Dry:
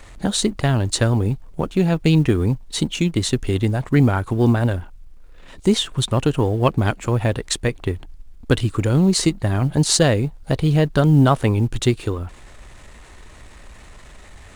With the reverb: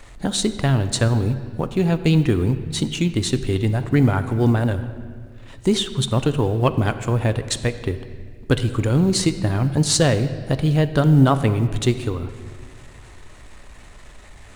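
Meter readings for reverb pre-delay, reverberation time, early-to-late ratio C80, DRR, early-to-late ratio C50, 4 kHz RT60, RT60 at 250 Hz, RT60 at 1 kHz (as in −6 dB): 7 ms, 1.8 s, 13.0 dB, 10.5 dB, 12.0 dB, 1.4 s, 2.2 s, 1.7 s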